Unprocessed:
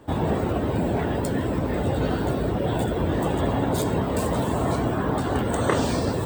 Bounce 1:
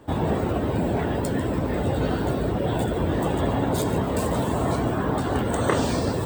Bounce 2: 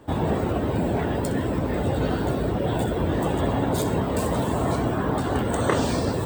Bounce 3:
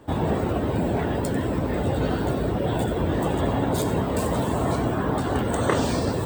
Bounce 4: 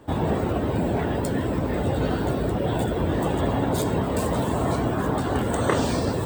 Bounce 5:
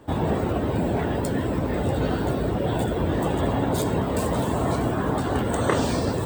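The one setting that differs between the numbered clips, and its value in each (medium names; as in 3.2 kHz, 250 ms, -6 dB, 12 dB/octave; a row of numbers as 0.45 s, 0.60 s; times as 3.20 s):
feedback echo behind a high-pass, time: 145 ms, 63 ms, 94 ms, 1244 ms, 640 ms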